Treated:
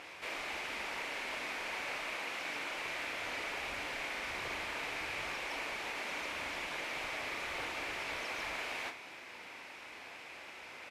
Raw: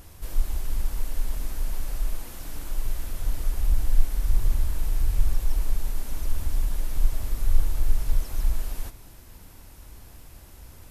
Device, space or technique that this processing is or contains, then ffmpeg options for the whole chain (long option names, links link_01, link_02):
megaphone: -filter_complex "[0:a]highpass=510,lowpass=3800,equalizer=frequency=2300:width_type=o:width=0.57:gain=11.5,asoftclip=type=hard:threshold=-37.5dB,asplit=2[link_01][link_02];[link_02]adelay=40,volume=-9dB[link_03];[link_01][link_03]amix=inputs=2:normalize=0,volume=5.5dB"